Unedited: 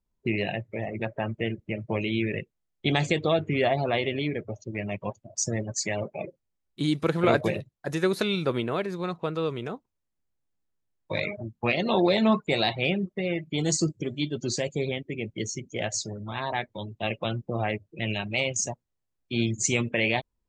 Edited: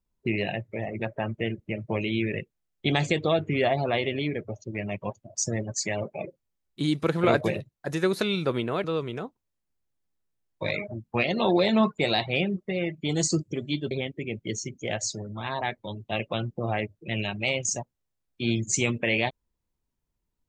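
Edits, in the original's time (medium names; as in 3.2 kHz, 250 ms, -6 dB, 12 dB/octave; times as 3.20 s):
8.84–9.33 s: delete
14.40–14.82 s: delete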